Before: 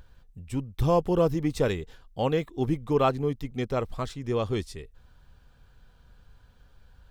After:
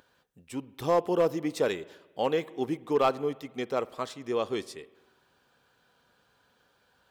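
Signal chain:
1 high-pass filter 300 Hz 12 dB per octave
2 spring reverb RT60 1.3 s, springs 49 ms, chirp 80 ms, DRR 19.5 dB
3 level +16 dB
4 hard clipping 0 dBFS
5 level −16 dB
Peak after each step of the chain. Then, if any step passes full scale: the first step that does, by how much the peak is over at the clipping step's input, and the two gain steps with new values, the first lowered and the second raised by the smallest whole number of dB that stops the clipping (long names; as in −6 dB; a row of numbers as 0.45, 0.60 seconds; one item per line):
−10.5, −10.5, +5.5, 0.0, −16.0 dBFS
step 3, 5.5 dB
step 3 +10 dB, step 5 −10 dB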